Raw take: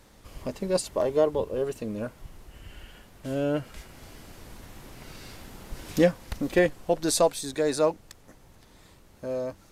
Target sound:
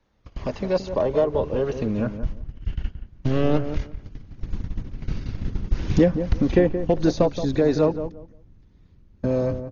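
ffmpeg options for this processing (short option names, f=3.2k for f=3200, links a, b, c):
-filter_complex "[0:a]aemphasis=mode=reproduction:type=50fm,asettb=1/sr,asplit=3[a][b][c];[a]atrim=end=2.724[d];[b]atrim=start=2.72:end=4.08,asetpts=PTS-STARTPTS,afade=t=in:d=0.004:c=qsin,afade=t=out:st=1.356:d=0.004:c=qsin,aeval=exprs='0.133*(cos(1*acos(clip(val(0)/0.133,-1,1)))-cos(1*PI/2))+0.0211*(cos(6*acos(clip(val(0)/0.133,-1,1)))-cos(6*PI/2))':c=same[e];[c]atrim=start=4.076[f];[d][e]acrossfade=d=0.004:c1=hsin:c2=qsin[g];[g][f]acrossfade=d=0.004:c1=qsin:c2=hsin,agate=range=-21dB:threshold=-42dB:ratio=16:detection=peak,acrossover=split=440|1000[h][i][j];[h]acompressor=threshold=-41dB:ratio=4[k];[i]acompressor=threshold=-25dB:ratio=4[l];[j]acompressor=threshold=-45dB:ratio=4[m];[k][l][m]amix=inputs=3:normalize=0,acrossover=split=570|2500[n][o][p];[o]volume=25.5dB,asoftclip=hard,volume=-25.5dB[q];[n][q][p]amix=inputs=3:normalize=0,asubboost=boost=7:cutoff=250,asplit=2[r][s];[s]adelay=174,lowpass=f=1k:p=1,volume=-9dB,asplit=2[t][u];[u]adelay=174,lowpass=f=1k:p=1,volume=0.22,asplit=2[v][w];[w]adelay=174,lowpass=f=1k:p=1,volume=0.22[x];[t][v][x]amix=inputs=3:normalize=0[y];[r][y]amix=inputs=2:normalize=0,volume=8dB" -ar 48000 -c:a ac3 -b:a 32k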